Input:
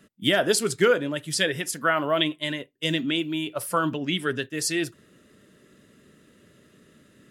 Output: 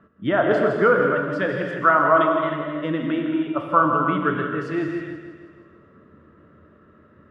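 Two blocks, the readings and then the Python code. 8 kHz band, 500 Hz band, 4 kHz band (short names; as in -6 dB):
under -30 dB, +5.0 dB, -14.0 dB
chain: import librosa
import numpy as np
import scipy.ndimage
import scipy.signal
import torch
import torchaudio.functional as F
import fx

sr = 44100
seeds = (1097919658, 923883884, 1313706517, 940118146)

p1 = fx.lowpass_res(x, sr, hz=1200.0, q=2.9)
p2 = fx.peak_eq(p1, sr, hz=82.0, db=11.0, octaves=0.45)
p3 = p2 + fx.echo_feedback(p2, sr, ms=160, feedback_pct=55, wet_db=-10.0, dry=0)
y = fx.rev_gated(p3, sr, seeds[0], gate_ms=340, shape='flat', drr_db=2.0)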